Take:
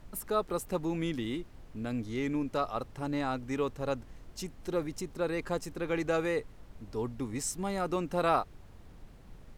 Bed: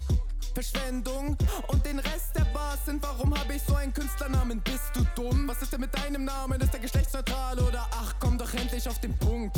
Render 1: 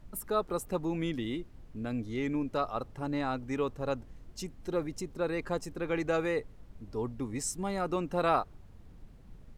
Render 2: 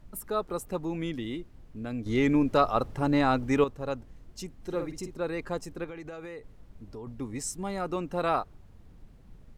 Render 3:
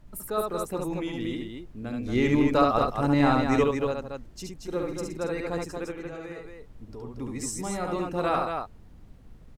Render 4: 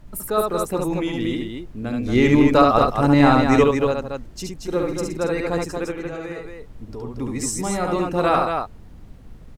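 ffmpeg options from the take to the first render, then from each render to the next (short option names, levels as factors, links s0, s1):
-af "afftdn=nr=6:nf=-52"
-filter_complex "[0:a]asettb=1/sr,asplit=3[s0][s1][s2];[s0]atrim=end=4.564[s3];[s1]atrim=start=4.56:end=5.18,asetpts=PTS-STARTPTS,afade=t=in:d=0.004:c=qsin,afade=t=out:st=0.616:d=0.004:c=qsin,asplit=2[s4][s5];[s5]adelay=50,volume=0.422[s6];[s4][s6]amix=inputs=2:normalize=0,atrim=end_sample=27342[s7];[s2]atrim=start=5.176[s8];[s3][s7]acrossfade=d=0.004:c1=hsin:c2=qsin[s9];[s9][s8]acrossfade=d=0.004:c1=qsin:c2=hsin,asettb=1/sr,asplit=3[s10][s11][s12];[s10]atrim=end=5.844[s13];[s11]atrim=start=5.84:end=7.07,asetpts=PTS-STARTPTS,afade=t=in:d=0.004:c=qsin,afade=t=out:st=1.226:d=0.004:c=qsin,acompressor=threshold=0.0141:ratio=12:attack=3.2:release=140:knee=1:detection=peak[s14];[s12]atrim=start=7.066[s15];[s13][s14]acrossfade=d=0.004:c1=hsin:c2=qsin[s16];[s16][s15]acrossfade=d=0.004:c1=qsin:c2=hsin,asplit=3[s17][s18][s19];[s17]atrim=end=2.062[s20];[s18]atrim=start=2.058:end=3.642,asetpts=PTS-STARTPTS,volume=2.66[s21];[s19]atrim=start=3.638[s22];[s20][s21]acrossfade=d=0.004:c1=hsin:c2=hsin[s23];[s23][s22]acrossfade=d=0.004:c1=hsin:c2=hsin"
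-af "aecho=1:1:69.97|230.3:0.708|0.562"
-af "volume=2.37,alimiter=limit=0.708:level=0:latency=1"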